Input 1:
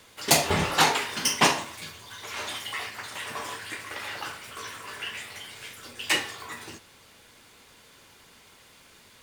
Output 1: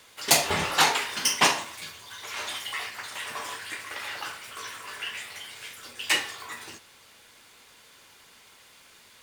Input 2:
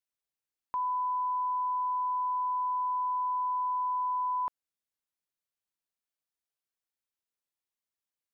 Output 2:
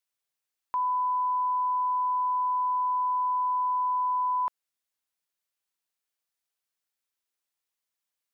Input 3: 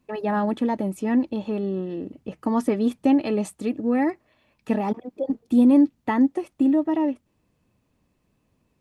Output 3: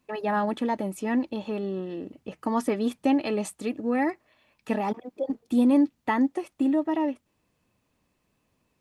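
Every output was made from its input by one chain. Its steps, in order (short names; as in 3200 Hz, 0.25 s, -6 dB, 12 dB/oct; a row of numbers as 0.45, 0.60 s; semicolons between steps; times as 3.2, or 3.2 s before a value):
low shelf 480 Hz -8 dB; match loudness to -27 LUFS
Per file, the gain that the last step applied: +1.0, +5.5, +1.5 dB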